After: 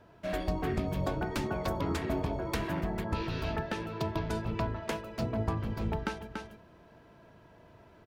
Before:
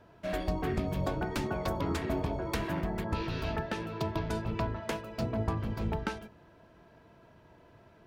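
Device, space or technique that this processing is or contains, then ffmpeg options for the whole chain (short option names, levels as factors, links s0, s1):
ducked delay: -filter_complex "[0:a]asplit=3[s0][s1][s2];[s1]adelay=287,volume=0.631[s3];[s2]apad=whole_len=368178[s4];[s3][s4]sidechaincompress=threshold=0.002:ratio=8:attack=16:release=111[s5];[s0][s5]amix=inputs=2:normalize=0"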